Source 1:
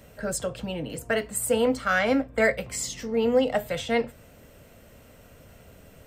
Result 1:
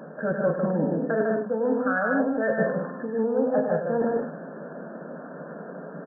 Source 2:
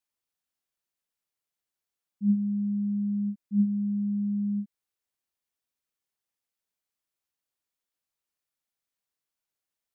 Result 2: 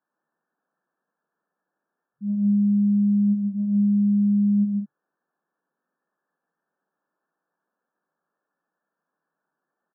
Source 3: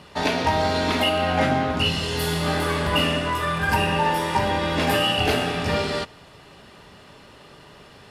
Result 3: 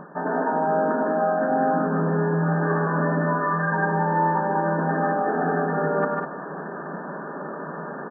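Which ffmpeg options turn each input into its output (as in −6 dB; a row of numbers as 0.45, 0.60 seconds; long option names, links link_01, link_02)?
-af "acontrast=70,afftfilt=real='re*between(b*sr/4096,140,1800)':imag='im*between(b*sr/4096,140,1800)':win_size=4096:overlap=0.75,areverse,acompressor=threshold=-29dB:ratio=20,areverse,aecho=1:1:96.21|151.6|201.2:0.447|0.708|0.447,volume=6.5dB"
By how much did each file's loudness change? +0.5, +7.5, −1.5 LU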